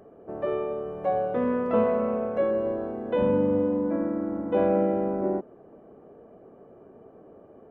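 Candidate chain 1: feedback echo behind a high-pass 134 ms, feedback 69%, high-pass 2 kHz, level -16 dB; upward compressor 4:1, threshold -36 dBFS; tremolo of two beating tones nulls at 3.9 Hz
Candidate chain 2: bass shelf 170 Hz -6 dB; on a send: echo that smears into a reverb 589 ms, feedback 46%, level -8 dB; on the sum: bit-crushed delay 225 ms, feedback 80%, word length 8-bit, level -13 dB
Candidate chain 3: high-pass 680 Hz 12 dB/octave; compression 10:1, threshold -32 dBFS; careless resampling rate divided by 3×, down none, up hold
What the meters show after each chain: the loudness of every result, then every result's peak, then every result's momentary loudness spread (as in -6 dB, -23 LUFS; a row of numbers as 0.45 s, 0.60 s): -29.5 LUFS, -26.5 LUFS, -37.5 LUFS; -12.5 dBFS, -12.0 dBFS, -23.0 dBFS; 21 LU, 17 LU, 4 LU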